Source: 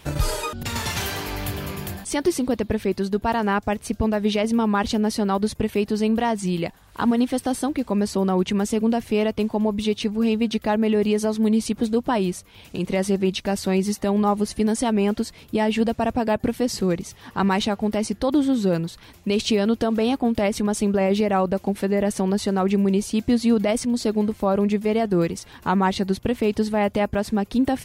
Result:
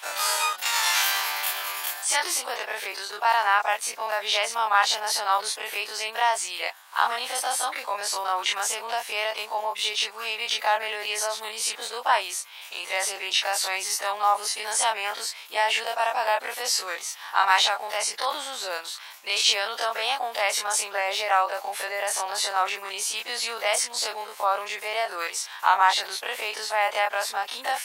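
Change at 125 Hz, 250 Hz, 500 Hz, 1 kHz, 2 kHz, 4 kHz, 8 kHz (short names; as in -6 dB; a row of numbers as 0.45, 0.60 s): under -40 dB, under -30 dB, -9.5 dB, +3.5 dB, +6.5 dB, +7.0 dB, +7.0 dB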